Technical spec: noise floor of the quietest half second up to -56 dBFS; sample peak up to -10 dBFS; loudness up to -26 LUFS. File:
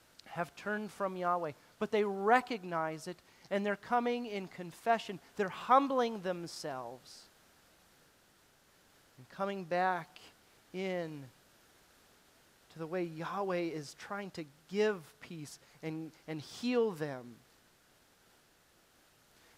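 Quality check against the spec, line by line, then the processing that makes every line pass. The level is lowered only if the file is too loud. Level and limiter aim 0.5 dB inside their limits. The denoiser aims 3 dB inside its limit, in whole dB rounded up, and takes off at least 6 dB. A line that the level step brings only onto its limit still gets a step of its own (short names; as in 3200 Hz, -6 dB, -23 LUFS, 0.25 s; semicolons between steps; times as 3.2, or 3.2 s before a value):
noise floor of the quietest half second -67 dBFS: OK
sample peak -13.0 dBFS: OK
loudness -35.5 LUFS: OK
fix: none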